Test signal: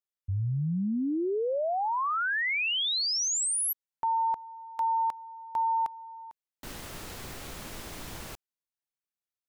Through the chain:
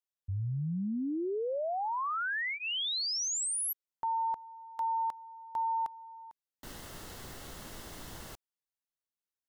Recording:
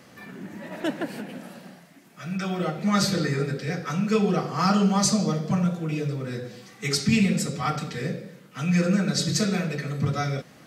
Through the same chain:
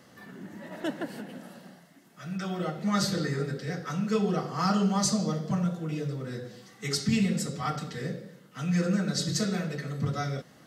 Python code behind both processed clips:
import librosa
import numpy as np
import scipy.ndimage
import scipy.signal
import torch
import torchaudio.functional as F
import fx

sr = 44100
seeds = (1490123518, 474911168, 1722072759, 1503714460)

y = fx.notch(x, sr, hz=2400.0, q=6.7)
y = F.gain(torch.from_numpy(y), -4.5).numpy()